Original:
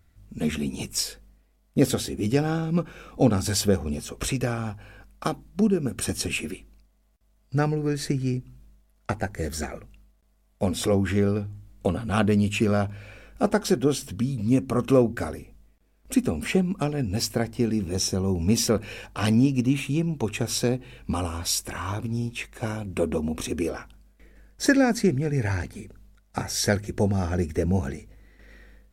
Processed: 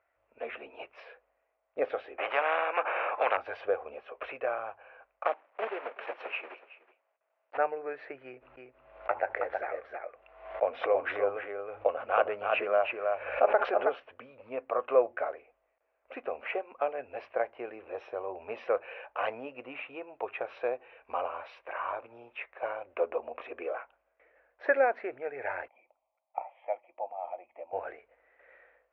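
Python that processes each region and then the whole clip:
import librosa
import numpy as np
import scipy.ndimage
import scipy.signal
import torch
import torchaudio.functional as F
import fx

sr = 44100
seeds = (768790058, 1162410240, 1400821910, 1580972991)

y = fx.chain(x, sr, fx.bandpass_edges(low_hz=240.0, high_hz=2100.0),
    fx.spectral_comp(ratio=4.0), at=(2.18, 3.37))
y = fx.chain(y, sr, fx.block_float(bits=3),
    fx.highpass(hz=270.0, slope=12),
    fx.echo_single(ms=373, db=-18.0), at=(5.25, 7.58))
y = fx.chain(y, sr, fx.echo_single(ms=320, db=-4.0),
    fx.pre_swell(db_per_s=47.0), at=(8.25, 14.0))
y = fx.chain(y, sr, fx.cheby_ripple(hz=3300.0, ripple_db=9),
    fx.low_shelf(hz=270.0, db=-9.5),
    fx.fixed_phaser(hz=420.0, stages=6), at=(25.68, 27.73))
y = scipy.signal.sosfilt(scipy.signal.ellip(3, 1.0, 50, [570.0, 2600.0], 'bandpass', fs=sr, output='sos'), y)
y = fx.tilt_eq(y, sr, slope=-4.0)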